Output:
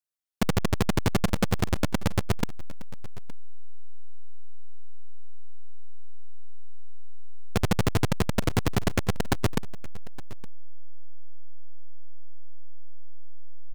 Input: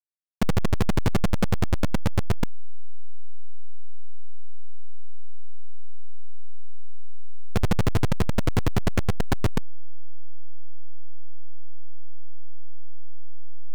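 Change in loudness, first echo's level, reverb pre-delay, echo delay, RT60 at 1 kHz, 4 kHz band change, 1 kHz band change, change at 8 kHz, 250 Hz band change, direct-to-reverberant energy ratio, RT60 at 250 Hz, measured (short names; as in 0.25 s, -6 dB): -1.0 dB, -19.0 dB, none, 0.866 s, none, +2.5 dB, +0.5 dB, n/a, -0.5 dB, none, none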